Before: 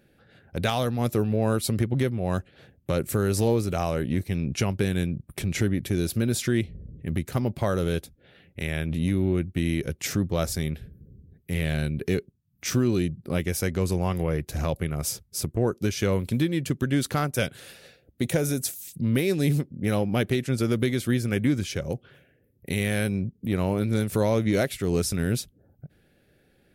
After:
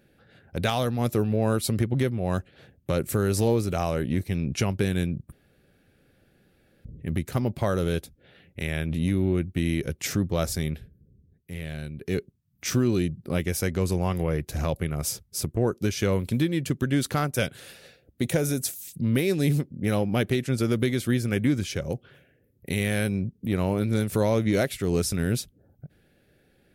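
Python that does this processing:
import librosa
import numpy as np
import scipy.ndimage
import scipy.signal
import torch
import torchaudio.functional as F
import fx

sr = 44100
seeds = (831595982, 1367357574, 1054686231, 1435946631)

y = fx.edit(x, sr, fx.room_tone_fill(start_s=5.32, length_s=1.53),
    fx.fade_down_up(start_s=10.76, length_s=1.42, db=-8.5, fade_s=0.13), tone=tone)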